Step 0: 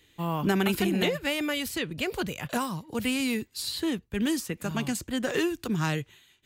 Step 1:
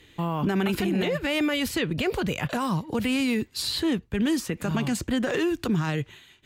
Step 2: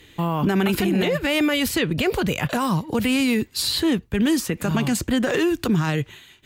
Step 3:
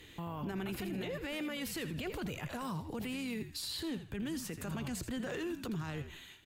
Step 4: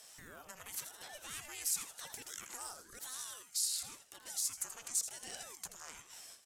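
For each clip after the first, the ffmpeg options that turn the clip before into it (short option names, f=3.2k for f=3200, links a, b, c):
-af "aemphasis=mode=reproduction:type=cd,acompressor=threshold=-28dB:ratio=6,alimiter=level_in=2.5dB:limit=-24dB:level=0:latency=1:release=38,volume=-2.5dB,volume=9dB"
-af "highshelf=f=11k:g=7,volume=4.5dB"
-filter_complex "[0:a]acompressor=threshold=-30dB:ratio=5,asplit=2[a][b];[b]asplit=4[c][d][e][f];[c]adelay=81,afreqshift=-69,volume=-11.5dB[g];[d]adelay=162,afreqshift=-138,volume=-20.4dB[h];[e]adelay=243,afreqshift=-207,volume=-29.2dB[i];[f]adelay=324,afreqshift=-276,volume=-38.1dB[j];[g][h][i][j]amix=inputs=4:normalize=0[k];[a][k]amix=inputs=2:normalize=0,alimiter=level_in=2dB:limit=-24dB:level=0:latency=1:release=11,volume=-2dB,volume=-5.5dB"
-af "aexciter=amount=12.3:drive=5.5:freq=5.5k,highpass=780,lowpass=7.5k,aeval=exprs='val(0)*sin(2*PI*740*n/s+740*0.75/0.95*sin(2*PI*0.95*n/s))':c=same,volume=-3dB"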